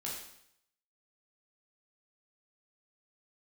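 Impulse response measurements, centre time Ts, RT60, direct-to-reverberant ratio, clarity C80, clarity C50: 50 ms, 0.70 s, -5.0 dB, 5.5 dB, 2.0 dB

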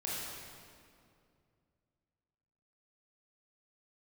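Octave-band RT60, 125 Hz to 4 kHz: 3.2, 2.9, 2.6, 2.2, 1.9, 1.7 s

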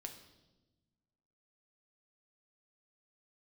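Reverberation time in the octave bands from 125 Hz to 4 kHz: 1.8, 1.8, 1.3, 0.90, 0.80, 1.0 s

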